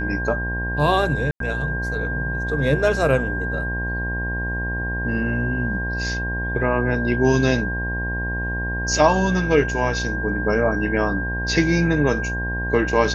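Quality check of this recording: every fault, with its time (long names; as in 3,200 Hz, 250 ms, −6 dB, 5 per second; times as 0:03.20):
mains buzz 60 Hz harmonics 18 −27 dBFS
whistle 1,600 Hz −26 dBFS
0:01.31–0:01.40: drop-out 93 ms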